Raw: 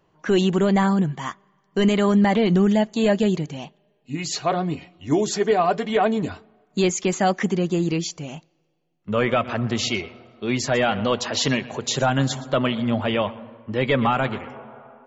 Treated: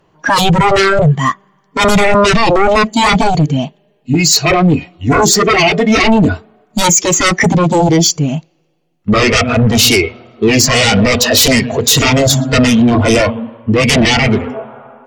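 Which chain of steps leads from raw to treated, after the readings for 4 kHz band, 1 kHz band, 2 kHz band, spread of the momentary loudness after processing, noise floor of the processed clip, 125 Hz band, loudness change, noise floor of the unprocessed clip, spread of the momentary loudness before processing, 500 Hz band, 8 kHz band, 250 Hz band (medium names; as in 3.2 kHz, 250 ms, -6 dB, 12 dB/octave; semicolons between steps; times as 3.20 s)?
+15.5 dB, +11.5 dB, +15.0 dB, 9 LU, -57 dBFS, +12.5 dB, +11.5 dB, -66 dBFS, 14 LU, +9.0 dB, no reading, +9.5 dB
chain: sine folder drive 13 dB, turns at -9 dBFS; spectral noise reduction 12 dB; trim +4.5 dB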